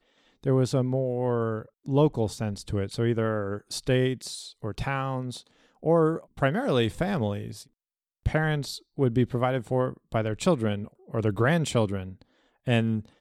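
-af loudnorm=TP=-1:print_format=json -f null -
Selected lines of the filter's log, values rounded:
"input_i" : "-27.3",
"input_tp" : "-8.8",
"input_lra" : "1.0",
"input_thresh" : "-37.7",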